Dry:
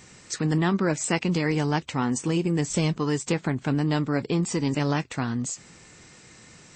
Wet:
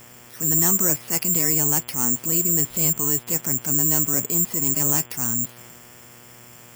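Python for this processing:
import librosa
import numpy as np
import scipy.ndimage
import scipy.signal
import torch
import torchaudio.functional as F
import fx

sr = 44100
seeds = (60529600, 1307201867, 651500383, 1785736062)

y = (np.kron(scipy.signal.resample_poly(x, 1, 6), np.eye(6)[0]) * 6)[:len(x)]
y = fx.dmg_buzz(y, sr, base_hz=120.0, harmonics=29, level_db=-47.0, tilt_db=-3, odd_only=False)
y = fx.transient(y, sr, attack_db=-7, sustain_db=2)
y = y * librosa.db_to_amplitude(-3.0)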